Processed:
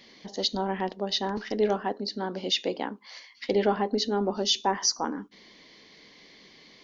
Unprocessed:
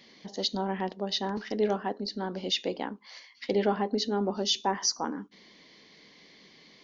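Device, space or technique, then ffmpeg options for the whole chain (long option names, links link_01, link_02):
low shelf boost with a cut just above: -filter_complex "[0:a]asettb=1/sr,asplit=3[link_01][link_02][link_03];[link_01]atrim=end=1.984[link_04];[link_02]atrim=start=1.98:end=3.04,asetpts=PTS-STARTPTS,afade=type=in:duration=0.004:curve=qsin,afade=type=out:start_time=1.056:duration=0.004:curve=qsin,highpass=98[link_05];[link_03]atrim=start=3.036[link_06];[link_04][link_05]acrossfade=duration=0.004:curve1=hsin:curve2=qsin[link_07];[link_07][link_06]acrossfade=duration=0.004:curve1=qsin:curve2=hsin,lowshelf=frequency=64:gain=6.5,equalizer=frequency=170:width_type=o:width=0.83:gain=-3.5,volume=2.5dB"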